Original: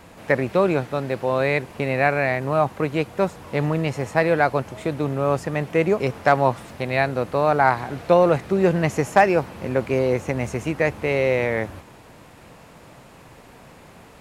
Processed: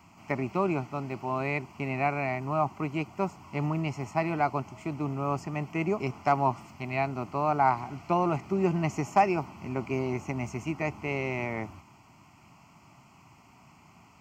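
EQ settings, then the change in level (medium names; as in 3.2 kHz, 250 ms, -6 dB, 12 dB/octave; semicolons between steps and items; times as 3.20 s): high-pass 85 Hz; dynamic bell 440 Hz, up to +8 dB, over -32 dBFS, Q 0.85; static phaser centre 2.5 kHz, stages 8; -6.5 dB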